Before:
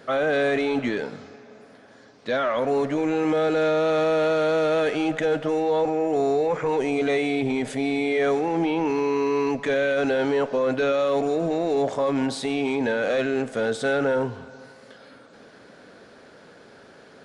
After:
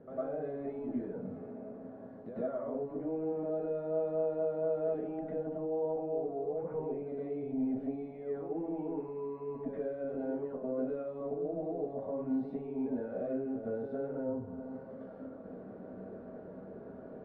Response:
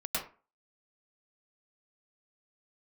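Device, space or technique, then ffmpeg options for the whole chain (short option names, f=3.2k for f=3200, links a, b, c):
television next door: -filter_complex "[0:a]acompressor=threshold=-39dB:ratio=4,lowpass=500[a];[1:a]atrim=start_sample=2205[b];[a][b]afir=irnorm=-1:irlink=0"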